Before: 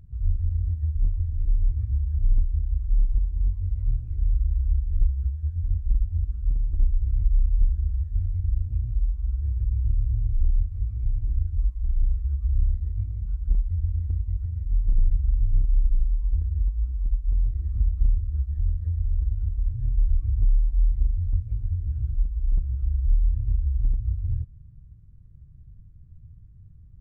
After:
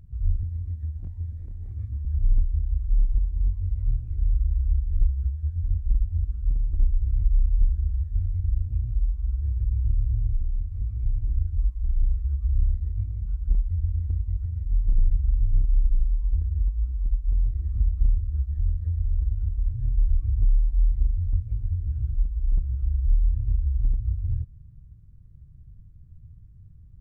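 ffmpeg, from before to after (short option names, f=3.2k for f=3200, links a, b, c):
-filter_complex "[0:a]asettb=1/sr,asplit=3[a][b][c];[a]atrim=end=0.434[d];[b]atrim=start=0.43:end=2.05,asetpts=PTS-STARTPTS,afade=t=in:d=0.004:c=qsin,afade=t=out:st=1.616:d=0.004:c=qsin,highpass=94[e];[c]atrim=start=2.046[f];[d][e]acrossfade=d=0.004:c1=hsin:c2=qsin[g];[g][f]acrossfade=d=0.004:c1=qsin:c2=hsin,asplit=3[h][i][j];[h]afade=t=out:st=10.36:d=0.02[k];[i]acompressor=threshold=-23dB:ratio=3:attack=3.2:release=140:knee=1:detection=peak,afade=t=in:st=10.36:d=0.02,afade=t=out:st=10.83:d=0.02[l];[j]afade=t=in:st=10.83:d=0.02[m];[k][l][m]amix=inputs=3:normalize=0"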